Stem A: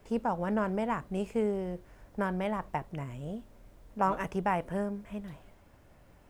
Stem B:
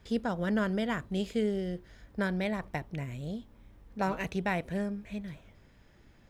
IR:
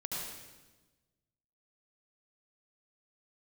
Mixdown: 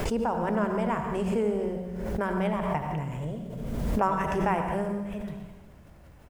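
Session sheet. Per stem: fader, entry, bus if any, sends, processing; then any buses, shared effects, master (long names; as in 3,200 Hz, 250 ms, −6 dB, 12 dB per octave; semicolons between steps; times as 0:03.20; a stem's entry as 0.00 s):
−1.5 dB, 0.00 s, send −3 dB, parametric band 67 Hz +7 dB 0.66 octaves
+2.5 dB, 1.1 ms, no send, treble cut that deepens with the level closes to 420 Hz; resonances in every octave E, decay 0.12 s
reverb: on, RT60 1.2 s, pre-delay 66 ms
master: background raised ahead of every attack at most 29 dB per second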